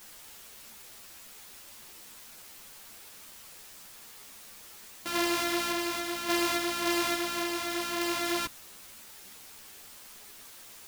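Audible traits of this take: a buzz of ramps at a fixed pitch in blocks of 128 samples; random-step tremolo, depth 55%; a quantiser's noise floor 8-bit, dither triangular; a shimmering, thickened sound

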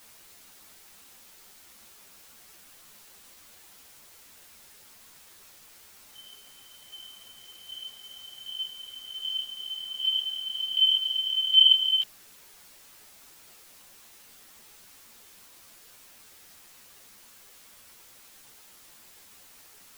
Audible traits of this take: chopped level 1.3 Hz, depth 65%, duty 25%; a quantiser's noise floor 10-bit, dither triangular; a shimmering, thickened sound

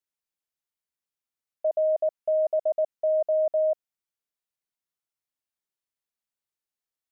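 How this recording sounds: noise floor -92 dBFS; spectral tilt +12.0 dB/octave

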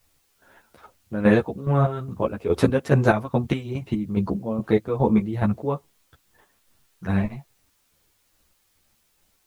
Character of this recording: chopped level 2.4 Hz, depth 65%, duty 45%; a quantiser's noise floor 12-bit, dither triangular; a shimmering, thickened sound

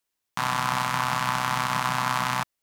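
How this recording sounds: noise floor -82 dBFS; spectral tilt -3.0 dB/octave

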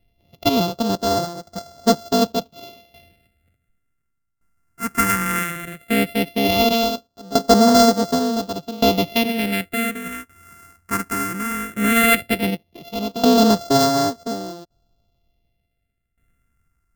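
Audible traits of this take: a buzz of ramps at a fixed pitch in blocks of 64 samples; phasing stages 4, 0.16 Hz, lowest notch 610–2400 Hz; tremolo saw down 0.68 Hz, depth 85%

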